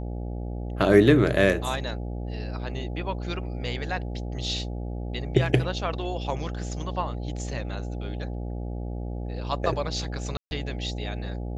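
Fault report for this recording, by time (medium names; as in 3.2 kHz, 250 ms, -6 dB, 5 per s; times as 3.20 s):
buzz 60 Hz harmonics 14 -32 dBFS
10.37–10.51 s: dropout 141 ms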